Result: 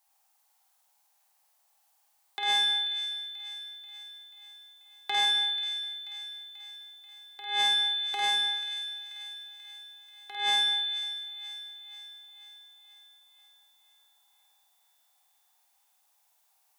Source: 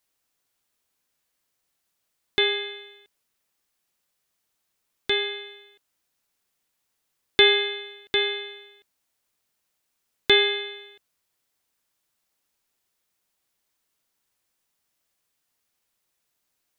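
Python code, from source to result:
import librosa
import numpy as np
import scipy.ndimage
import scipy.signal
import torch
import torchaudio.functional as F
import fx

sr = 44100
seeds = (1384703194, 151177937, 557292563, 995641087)

p1 = fx.high_shelf(x, sr, hz=5400.0, db=8.0)
p2 = fx.over_compress(p1, sr, threshold_db=-23.0, ratio=-0.5)
p3 = fx.highpass_res(p2, sr, hz=800.0, q=7.6)
p4 = fx.room_flutter(p3, sr, wall_m=8.7, rt60_s=1.0)
p5 = 10.0 ** (-13.0 / 20.0) * np.tanh(p4 / 10.0 ** (-13.0 / 20.0))
p6 = p5 + fx.echo_wet_highpass(p5, sr, ms=486, feedback_pct=57, hz=1600.0, wet_db=-12.5, dry=0)
y = p6 * 10.0 ** (-6.5 / 20.0)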